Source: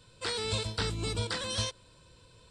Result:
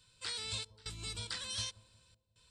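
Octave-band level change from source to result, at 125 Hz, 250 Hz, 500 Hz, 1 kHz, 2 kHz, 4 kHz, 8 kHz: −13.0, −16.5, −18.5, −12.5, −8.0, −5.0, −4.0 decibels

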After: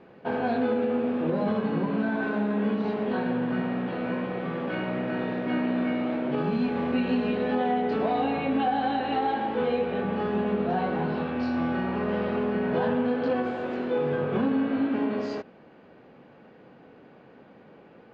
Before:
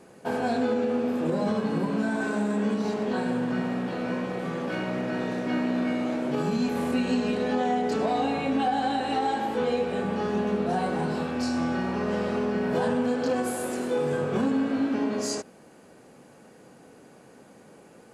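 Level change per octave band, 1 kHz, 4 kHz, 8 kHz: 0.0 dB, −3.5 dB, below −25 dB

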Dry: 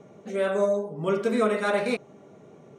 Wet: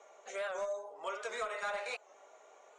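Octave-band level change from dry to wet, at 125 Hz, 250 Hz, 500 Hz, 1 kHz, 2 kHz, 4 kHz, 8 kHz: below −35 dB, −32.0 dB, −15.0 dB, −9.0 dB, −8.0 dB, −7.5 dB, −4.5 dB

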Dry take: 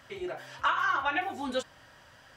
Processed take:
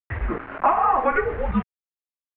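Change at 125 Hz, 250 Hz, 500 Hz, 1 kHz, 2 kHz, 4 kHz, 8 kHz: +21.5 dB, +11.0 dB, +11.0 dB, +9.5 dB, +1.5 dB, below −10 dB, below −30 dB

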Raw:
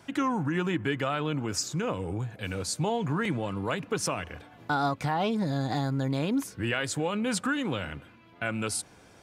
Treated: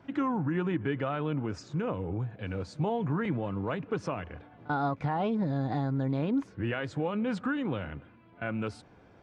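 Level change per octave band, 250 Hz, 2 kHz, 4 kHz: −1.0, −5.5, −12.0 decibels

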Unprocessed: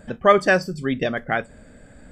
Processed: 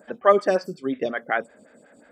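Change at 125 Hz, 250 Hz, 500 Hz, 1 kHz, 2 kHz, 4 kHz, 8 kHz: −11.0 dB, −4.5 dB, −1.0 dB, −2.5 dB, −6.5 dB, −8.0 dB, can't be measured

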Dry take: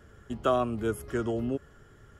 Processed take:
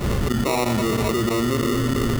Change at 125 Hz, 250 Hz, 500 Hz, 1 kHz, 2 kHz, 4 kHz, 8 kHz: +14.5, +11.5, +7.0, +7.5, +14.0, +17.5, +18.5 decibels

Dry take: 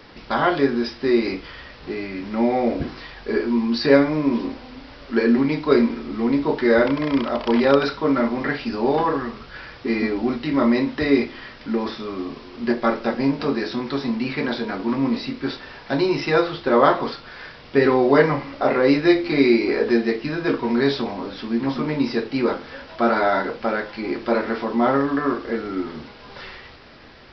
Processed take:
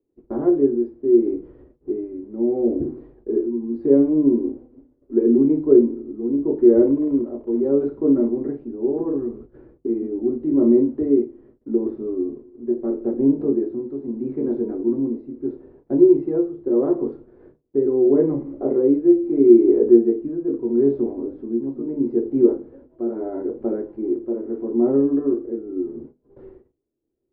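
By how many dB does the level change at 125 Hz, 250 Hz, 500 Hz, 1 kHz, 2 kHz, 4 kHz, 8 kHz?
−5.5 dB, +2.0 dB, +1.5 dB, below −15 dB, below −30 dB, below −40 dB, can't be measured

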